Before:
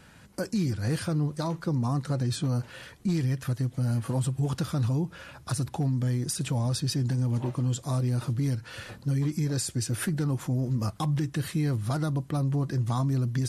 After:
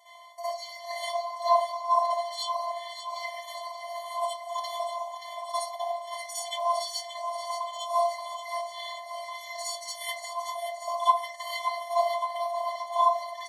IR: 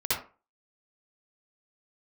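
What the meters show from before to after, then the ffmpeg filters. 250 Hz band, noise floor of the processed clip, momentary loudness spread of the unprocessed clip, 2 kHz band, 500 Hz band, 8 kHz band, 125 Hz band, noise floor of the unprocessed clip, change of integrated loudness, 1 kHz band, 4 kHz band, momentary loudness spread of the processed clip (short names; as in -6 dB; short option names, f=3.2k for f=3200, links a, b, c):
under -40 dB, -43 dBFS, 4 LU, +2.0 dB, +6.0 dB, -2.5 dB, under -40 dB, -52 dBFS, -2.0 dB, +14.0 dB, +3.5 dB, 12 LU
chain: -filter_complex "[0:a]aecho=1:1:577|1154|1731|2308|2885|3462|4039:0.376|0.21|0.118|0.066|0.037|0.0207|0.0116,asplit=2[a][b];[b]adynamicsmooth=sensitivity=2:basefreq=2.7k,volume=-0.5dB[c];[a][c]amix=inputs=2:normalize=0[d];[1:a]atrim=start_sample=2205[e];[d][e]afir=irnorm=-1:irlink=0,afftfilt=real='hypot(re,im)*cos(PI*b)':imag='0':win_size=512:overlap=0.75,aecho=1:1:2.9:0.32,areverse,acompressor=mode=upward:threshold=-30dB:ratio=2.5,areverse,afftfilt=real='re*eq(mod(floor(b*sr/1024/590),2),1)':imag='im*eq(mod(floor(b*sr/1024/590),2),1)':win_size=1024:overlap=0.75,volume=-1.5dB"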